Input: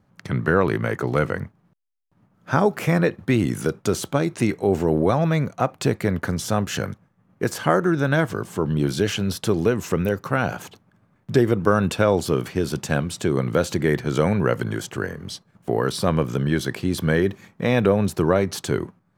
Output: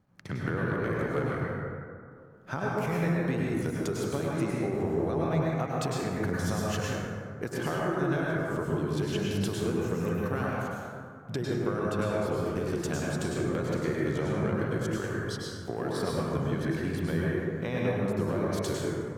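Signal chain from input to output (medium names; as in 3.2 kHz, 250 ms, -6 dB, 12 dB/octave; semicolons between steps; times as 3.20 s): transient shaper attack -2 dB, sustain -8 dB; compression, threshold -24 dBFS, peak gain reduction 11 dB; plate-style reverb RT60 2.2 s, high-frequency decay 0.4×, pre-delay 90 ms, DRR -4.5 dB; trim -6.5 dB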